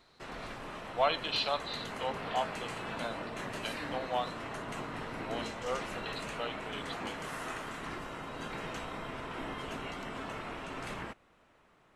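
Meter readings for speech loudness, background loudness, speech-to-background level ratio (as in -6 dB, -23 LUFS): -37.0 LUFS, -40.5 LUFS, 3.5 dB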